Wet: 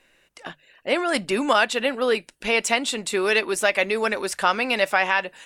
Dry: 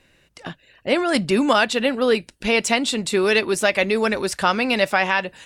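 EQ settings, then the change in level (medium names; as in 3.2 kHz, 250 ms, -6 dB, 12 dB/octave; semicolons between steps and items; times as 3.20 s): peaking EQ 92 Hz -14.5 dB 2.8 oct; peaking EQ 4.5 kHz -4 dB 0.93 oct; hum notches 50/100/150 Hz; 0.0 dB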